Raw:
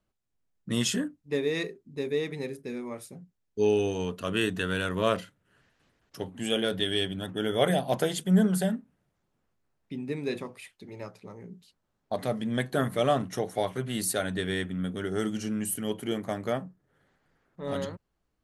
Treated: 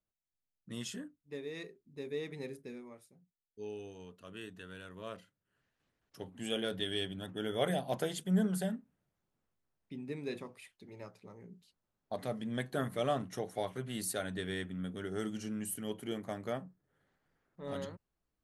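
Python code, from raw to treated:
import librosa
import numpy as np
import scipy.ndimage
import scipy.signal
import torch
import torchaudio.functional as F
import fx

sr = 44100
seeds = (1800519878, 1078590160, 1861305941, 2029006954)

y = fx.gain(x, sr, db=fx.line((1.47, -14.5), (2.57, -7.0), (3.13, -19.5), (5.03, -19.5), (6.44, -8.0)))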